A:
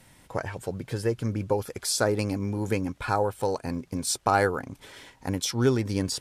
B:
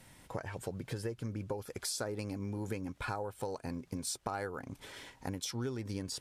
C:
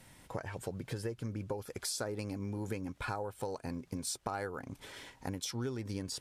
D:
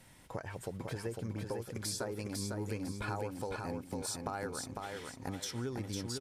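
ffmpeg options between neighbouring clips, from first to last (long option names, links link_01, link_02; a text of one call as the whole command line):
ffmpeg -i in.wav -af "acompressor=threshold=-33dB:ratio=5,volume=-2.5dB" out.wav
ffmpeg -i in.wav -af anull out.wav
ffmpeg -i in.wav -af "aecho=1:1:502|1004|1506|2008:0.631|0.208|0.0687|0.0227,volume=-1.5dB" out.wav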